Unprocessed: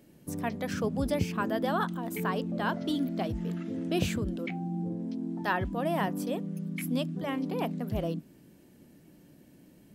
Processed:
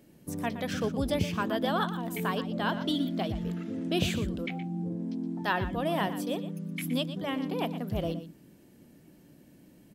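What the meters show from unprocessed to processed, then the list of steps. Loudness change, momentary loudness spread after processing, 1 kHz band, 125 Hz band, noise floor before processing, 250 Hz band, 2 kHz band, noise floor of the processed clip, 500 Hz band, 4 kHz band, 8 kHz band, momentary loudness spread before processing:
+0.5 dB, 6 LU, +0.5 dB, 0.0 dB, -58 dBFS, 0.0 dB, +1.0 dB, -57 dBFS, 0.0 dB, +5.5 dB, +0.5 dB, 5 LU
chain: dynamic bell 3.4 kHz, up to +7 dB, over -56 dBFS, Q 2.4; on a send: delay 119 ms -12 dB

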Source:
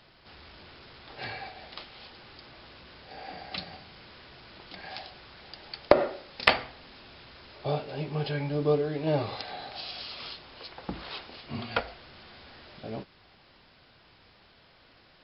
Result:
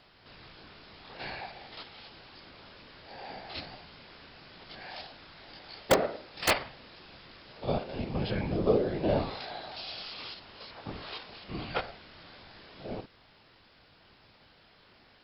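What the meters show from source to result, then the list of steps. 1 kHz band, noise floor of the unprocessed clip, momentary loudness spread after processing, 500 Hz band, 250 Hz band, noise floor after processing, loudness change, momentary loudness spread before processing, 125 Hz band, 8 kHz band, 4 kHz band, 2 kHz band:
-2.0 dB, -59 dBFS, 23 LU, -2.0 dB, 0.0 dB, -61 dBFS, -2.0 dB, 24 LU, -2.5 dB, no reading, -2.0 dB, -3.5 dB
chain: spectrogram pixelated in time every 50 ms; integer overflow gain 12 dB; whisper effect

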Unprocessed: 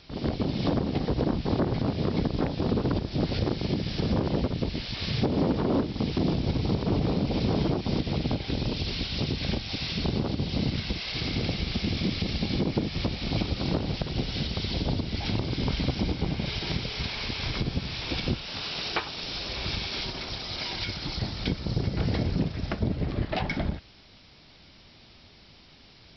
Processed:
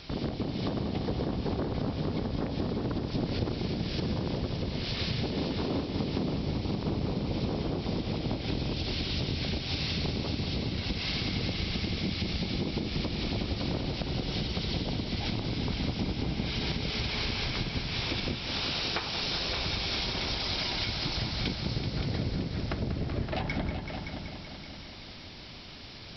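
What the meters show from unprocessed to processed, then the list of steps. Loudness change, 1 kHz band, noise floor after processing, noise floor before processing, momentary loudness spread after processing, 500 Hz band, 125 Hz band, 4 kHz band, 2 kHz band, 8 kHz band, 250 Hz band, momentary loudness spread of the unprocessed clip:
-3.0 dB, -3.0 dB, -44 dBFS, -53 dBFS, 3 LU, -4.0 dB, -3.5 dB, -0.5 dB, -0.5 dB, no reading, -4.0 dB, 5 LU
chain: compression, threshold -36 dBFS, peak gain reduction 14.5 dB; multi-head delay 190 ms, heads all three, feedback 54%, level -11 dB; trim +6 dB

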